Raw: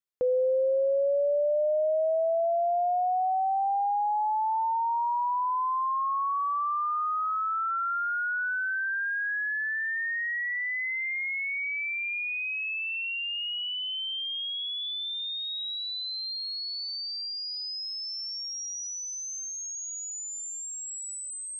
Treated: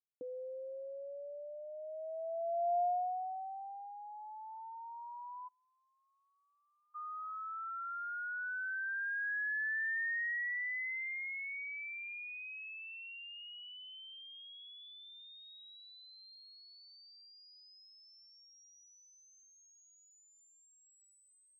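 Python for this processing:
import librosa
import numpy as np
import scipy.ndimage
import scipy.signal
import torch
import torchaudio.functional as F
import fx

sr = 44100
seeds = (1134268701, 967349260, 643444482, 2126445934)

y = fx.filter_sweep_bandpass(x, sr, from_hz=280.0, to_hz=1800.0, start_s=1.66, end_s=3.94, q=3.7)
y = fx.formant_cascade(y, sr, vowel='i', at=(5.47, 6.94), fade=0.02)
y = F.gain(torch.from_numpy(y), -5.5).numpy()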